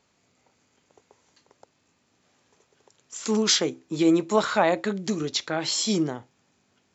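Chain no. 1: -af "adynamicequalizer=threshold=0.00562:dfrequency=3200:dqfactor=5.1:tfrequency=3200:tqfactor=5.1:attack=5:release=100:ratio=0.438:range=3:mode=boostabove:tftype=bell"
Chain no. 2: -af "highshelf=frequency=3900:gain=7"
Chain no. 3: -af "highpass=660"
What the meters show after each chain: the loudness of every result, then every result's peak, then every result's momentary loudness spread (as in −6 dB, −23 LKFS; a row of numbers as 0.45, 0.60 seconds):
−24.0, −22.5, −27.5 LKFS; −7.0, −2.5, −7.5 dBFS; 10, 12, 15 LU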